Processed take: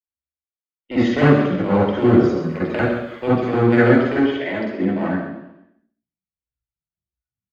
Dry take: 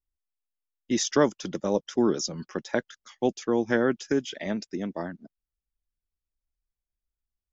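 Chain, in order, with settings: 3.95–4.76 s: high-pass 280 Hz 24 dB/octave; spectral noise reduction 20 dB; low-pass 2.2 kHz 12 dB/octave; 1.98–3.42 s: added noise pink -67 dBFS; one-sided clip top -28 dBFS; feedback delay 135 ms, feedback 15%, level -11 dB; reverberation RT60 0.85 s, pre-delay 45 ms, DRR -6 dB; trim -4 dB

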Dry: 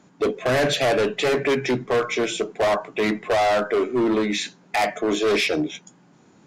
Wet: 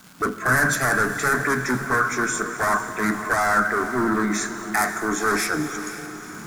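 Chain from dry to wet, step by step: recorder AGC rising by 16 dB/s; FFT filter 220 Hz 0 dB, 560 Hz -14 dB, 1.5 kHz +11 dB, 2.9 kHz -21 dB, 5.9 kHz +1 dB, 9.9 kHz +11 dB; crackle 420 per s -37 dBFS; on a send: echo that smears into a reverb 488 ms, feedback 48%, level -11.5 dB; on the sum: gated-style reverb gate 300 ms flat, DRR 11 dB; in parallel at -11 dB: word length cut 8-bit, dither triangular

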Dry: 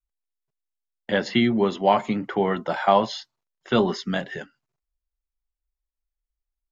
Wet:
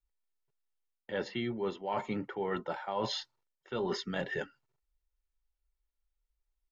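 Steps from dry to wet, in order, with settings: treble shelf 5.2 kHz -8 dB; comb 2.2 ms, depth 40%; reverse; compression 12:1, threshold -31 dBFS, peak gain reduction 19 dB; reverse

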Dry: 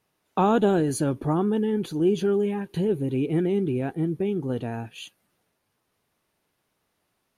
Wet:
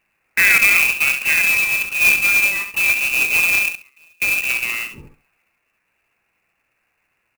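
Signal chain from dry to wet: 3.68–4.22 s: inverted gate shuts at -24 dBFS, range -32 dB; feedback delay 68 ms, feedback 20%, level -8 dB; frequency inversion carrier 2.8 kHz; sampling jitter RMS 0.023 ms; trim +6.5 dB

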